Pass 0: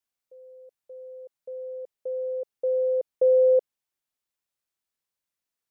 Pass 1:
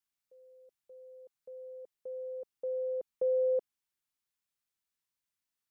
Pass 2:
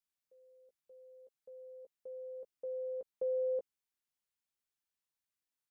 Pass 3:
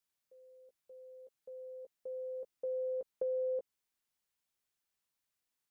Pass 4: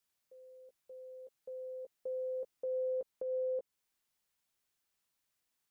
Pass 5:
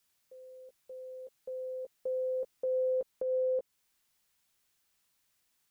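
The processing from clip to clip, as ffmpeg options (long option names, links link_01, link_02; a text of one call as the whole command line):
ffmpeg -i in.wav -af "equalizer=frequency=540:width=1.5:gain=-8.5,volume=-2dB" out.wav
ffmpeg -i in.wav -filter_complex "[0:a]asplit=2[link_01][link_02];[link_02]adelay=15,volume=-8dB[link_03];[link_01][link_03]amix=inputs=2:normalize=0,volume=-5dB" out.wav
ffmpeg -i in.wav -af "acompressor=threshold=-37dB:ratio=6,volume=4dB" out.wav
ffmpeg -i in.wav -af "alimiter=level_in=11dB:limit=-24dB:level=0:latency=1:release=272,volume=-11dB,volume=3.5dB" out.wav
ffmpeg -i in.wav -af "equalizer=frequency=520:width_type=o:width=2.5:gain=-3,volume=8dB" out.wav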